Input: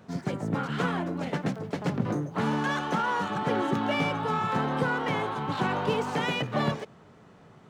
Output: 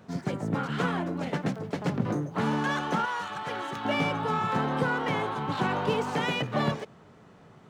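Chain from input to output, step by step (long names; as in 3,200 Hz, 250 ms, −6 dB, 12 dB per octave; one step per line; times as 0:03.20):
0:03.05–0:03.85: parametric band 230 Hz −14 dB 2.8 octaves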